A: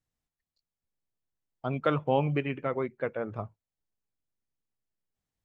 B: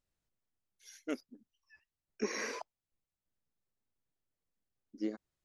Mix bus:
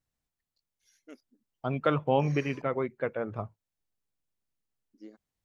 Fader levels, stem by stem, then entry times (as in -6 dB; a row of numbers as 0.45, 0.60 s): +0.5, -12.0 dB; 0.00, 0.00 s